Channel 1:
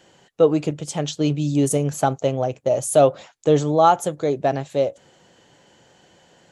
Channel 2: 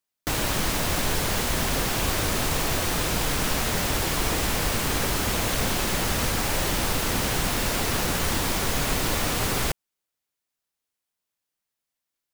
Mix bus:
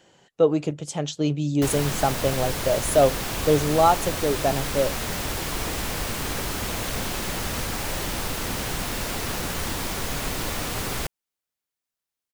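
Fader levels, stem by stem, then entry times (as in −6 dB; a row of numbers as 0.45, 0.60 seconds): −3.0, −3.5 decibels; 0.00, 1.35 seconds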